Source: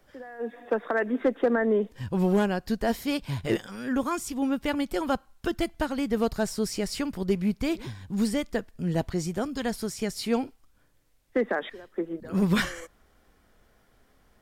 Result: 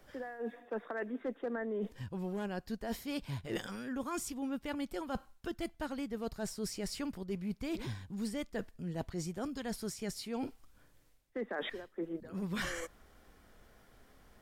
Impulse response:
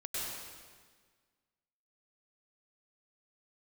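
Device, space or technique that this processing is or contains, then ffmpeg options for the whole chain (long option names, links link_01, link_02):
compression on the reversed sound: -af "areverse,acompressor=threshold=-37dB:ratio=6,areverse,volume=1dB"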